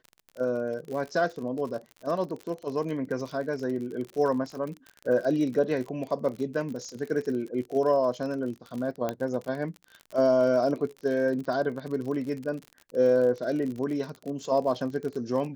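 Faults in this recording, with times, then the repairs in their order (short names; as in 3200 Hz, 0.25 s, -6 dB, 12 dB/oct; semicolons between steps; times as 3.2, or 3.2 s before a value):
crackle 47/s -34 dBFS
9.09 pop -16 dBFS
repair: de-click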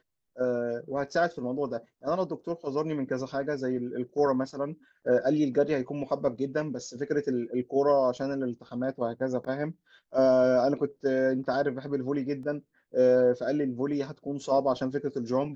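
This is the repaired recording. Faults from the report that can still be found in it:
none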